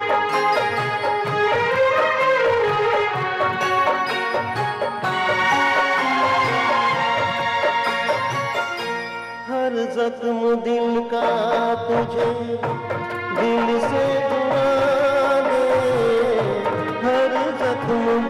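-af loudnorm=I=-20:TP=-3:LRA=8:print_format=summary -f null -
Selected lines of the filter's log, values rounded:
Input Integrated:    -19.8 LUFS
Input True Peak:      -8.8 dBTP
Input LRA:             2.8 LU
Input Threshold:     -29.8 LUFS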